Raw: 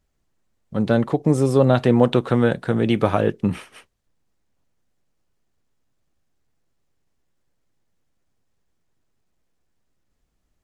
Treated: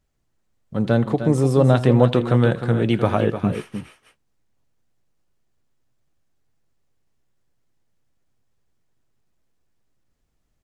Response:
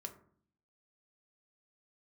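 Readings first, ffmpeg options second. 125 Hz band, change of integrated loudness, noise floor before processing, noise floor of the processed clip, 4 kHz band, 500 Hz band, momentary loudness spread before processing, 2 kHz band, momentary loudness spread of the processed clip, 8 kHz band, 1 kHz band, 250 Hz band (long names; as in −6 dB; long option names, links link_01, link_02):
+3.5 dB, +0.5 dB, −71 dBFS, −70 dBFS, −0.5 dB, −0.5 dB, 9 LU, −0.5 dB, 13 LU, can't be measured, −0.5 dB, −0.5 dB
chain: -af "equalizer=frequency=120:width_type=o:width=0.24:gain=5.5,aecho=1:1:82|304|318:0.106|0.316|0.126,volume=-1dB"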